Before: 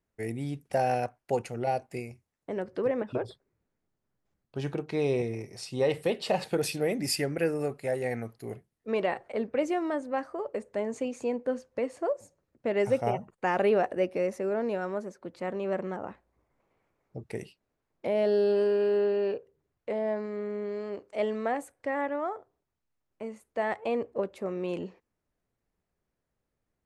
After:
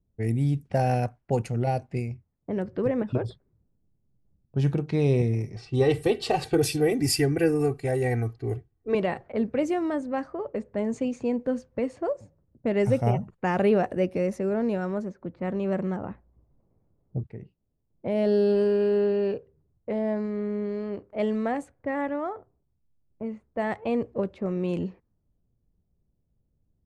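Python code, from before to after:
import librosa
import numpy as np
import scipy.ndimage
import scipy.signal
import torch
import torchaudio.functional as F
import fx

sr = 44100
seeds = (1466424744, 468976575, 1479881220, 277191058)

y = fx.comb(x, sr, ms=2.6, depth=0.92, at=(5.56, 8.95))
y = fx.edit(y, sr, fx.fade_in_from(start_s=17.27, length_s=1.05, floor_db=-13.0), tone=tone)
y = fx.bass_treble(y, sr, bass_db=14, treble_db=2)
y = fx.env_lowpass(y, sr, base_hz=620.0, full_db=-23.0)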